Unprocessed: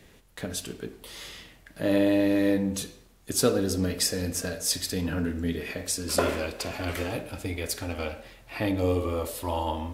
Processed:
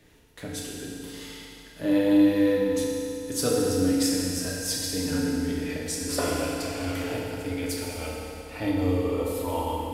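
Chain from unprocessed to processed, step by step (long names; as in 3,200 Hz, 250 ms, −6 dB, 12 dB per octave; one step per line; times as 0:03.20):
feedback delay network reverb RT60 2.9 s, high-frequency decay 0.9×, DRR −3.5 dB
level −5.5 dB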